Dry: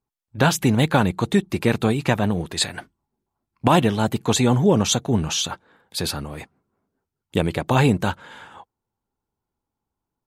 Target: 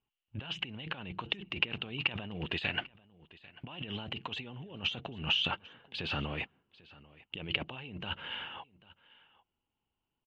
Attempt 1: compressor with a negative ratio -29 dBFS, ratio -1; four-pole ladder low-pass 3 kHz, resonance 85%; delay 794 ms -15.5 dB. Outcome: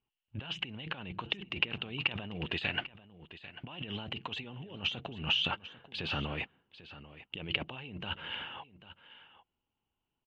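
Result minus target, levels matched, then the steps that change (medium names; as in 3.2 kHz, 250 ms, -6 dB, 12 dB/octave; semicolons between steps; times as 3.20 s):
echo-to-direct +6 dB
change: delay 794 ms -21.5 dB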